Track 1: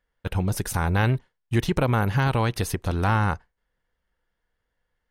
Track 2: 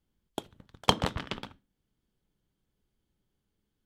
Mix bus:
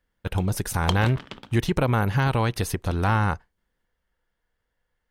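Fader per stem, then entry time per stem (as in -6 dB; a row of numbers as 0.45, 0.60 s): 0.0, -3.0 dB; 0.00, 0.00 s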